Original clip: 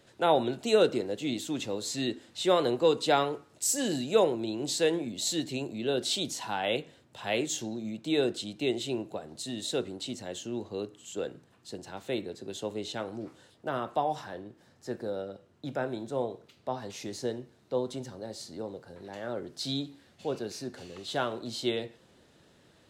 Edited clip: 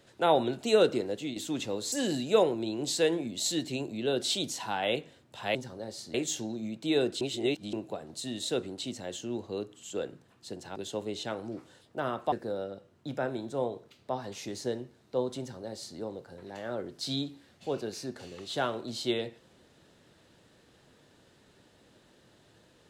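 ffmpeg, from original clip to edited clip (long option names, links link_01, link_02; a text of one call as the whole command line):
ffmpeg -i in.wav -filter_complex "[0:a]asplit=9[link_01][link_02][link_03][link_04][link_05][link_06][link_07][link_08][link_09];[link_01]atrim=end=1.36,asetpts=PTS-STARTPTS,afade=type=out:start_time=1.08:duration=0.28:curve=qsin:silence=0.334965[link_10];[link_02]atrim=start=1.36:end=1.922,asetpts=PTS-STARTPTS,afade=type=in:duration=0.004:curve=hsin:silence=0.334965[link_11];[link_03]atrim=start=3.728:end=7.362[link_12];[link_04]atrim=start=17.968:end=18.562[link_13];[link_05]atrim=start=7.358:end=8.432[link_14];[link_06]atrim=start=8.428:end=8.952,asetpts=PTS-STARTPTS,areverse[link_15];[link_07]atrim=start=8.948:end=11.982[link_16];[link_08]atrim=start=12.448:end=14.012[link_17];[link_09]atrim=start=14.898[link_18];[link_10][link_11]concat=n=2:v=0:a=1[link_19];[link_19][link_12]acrossfade=duration=0.004:curve1=hsin:curve2=hsin[link_20];[link_20][link_13]acrossfade=duration=0.004:curve1=hsin:curve2=hsin[link_21];[link_21][link_14]acrossfade=duration=0.004:curve1=hsin:curve2=hsin[link_22];[link_22][link_15]acrossfade=duration=0.004:curve1=hsin:curve2=hsin[link_23];[link_23][link_16]acrossfade=duration=0.004:curve1=hsin:curve2=hsin[link_24];[link_24][link_17]acrossfade=duration=0.004:curve1=hsin:curve2=hsin[link_25];[link_25][link_18]acrossfade=duration=0.004:curve1=hsin:curve2=hsin" out.wav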